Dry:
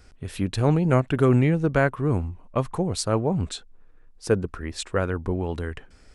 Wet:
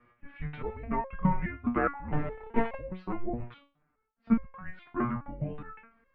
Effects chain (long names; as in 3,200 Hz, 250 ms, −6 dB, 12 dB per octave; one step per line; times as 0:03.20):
0:02.12–0:02.75: power curve on the samples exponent 0.35
single-sideband voice off tune −230 Hz 200–2,600 Hz
step-sequenced resonator 4.8 Hz 120–540 Hz
level +8 dB